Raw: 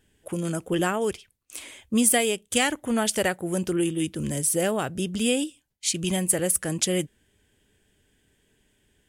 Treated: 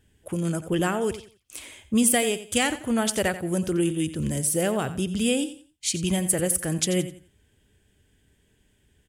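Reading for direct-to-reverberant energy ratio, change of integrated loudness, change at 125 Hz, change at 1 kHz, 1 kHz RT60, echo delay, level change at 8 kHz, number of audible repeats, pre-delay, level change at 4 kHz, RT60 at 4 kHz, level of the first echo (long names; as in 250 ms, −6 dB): no reverb audible, 0.0 dB, +2.5 dB, −0.5 dB, no reverb audible, 88 ms, −1.0 dB, 2, no reverb audible, −1.0 dB, no reverb audible, −13.5 dB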